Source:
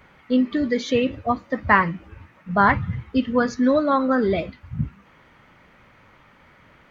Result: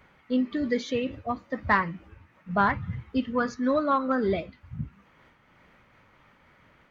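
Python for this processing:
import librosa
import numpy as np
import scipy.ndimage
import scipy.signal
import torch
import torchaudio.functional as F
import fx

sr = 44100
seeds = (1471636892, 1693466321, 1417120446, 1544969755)

y = fx.peak_eq(x, sr, hz=1200.0, db=5.5, octaves=0.67, at=(3.33, 4.12))
y = 10.0 ** (-3.0 / 20.0) * np.tanh(y / 10.0 ** (-3.0 / 20.0))
y = fx.am_noise(y, sr, seeds[0], hz=5.7, depth_pct=55)
y = F.gain(torch.from_numpy(y), -3.5).numpy()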